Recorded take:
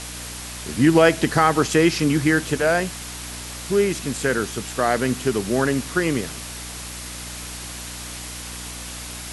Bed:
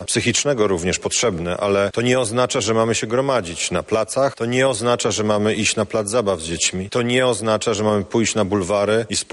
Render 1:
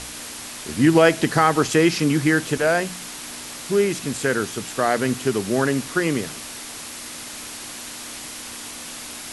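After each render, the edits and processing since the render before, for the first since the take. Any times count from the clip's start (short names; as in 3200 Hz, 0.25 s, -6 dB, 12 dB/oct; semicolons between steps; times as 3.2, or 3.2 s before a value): de-hum 60 Hz, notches 3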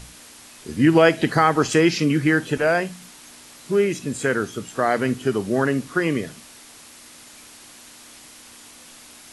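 noise print and reduce 10 dB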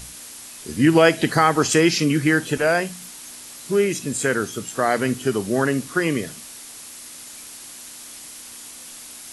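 high shelf 5500 Hz +10.5 dB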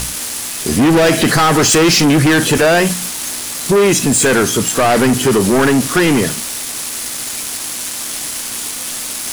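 sample leveller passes 5; limiter -7.5 dBFS, peak gain reduction 4.5 dB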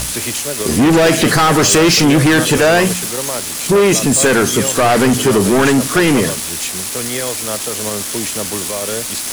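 add bed -6.5 dB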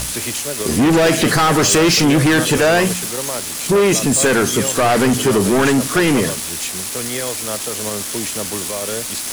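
gain -2.5 dB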